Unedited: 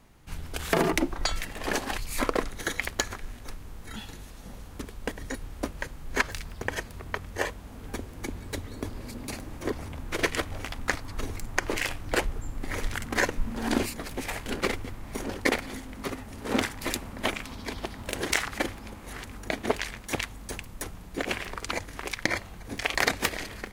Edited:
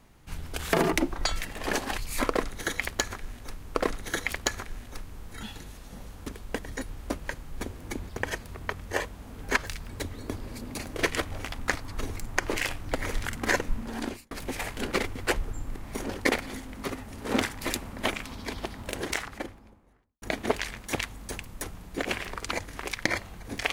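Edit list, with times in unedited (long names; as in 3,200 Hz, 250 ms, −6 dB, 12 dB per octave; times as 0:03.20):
0:02.28–0:03.75: repeat, 2 plays
0:06.14–0:06.54: swap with 0:07.94–0:08.42
0:09.49–0:10.16: remove
0:12.15–0:12.64: move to 0:14.96
0:13.39–0:14.00: fade out
0:17.82–0:19.42: fade out and dull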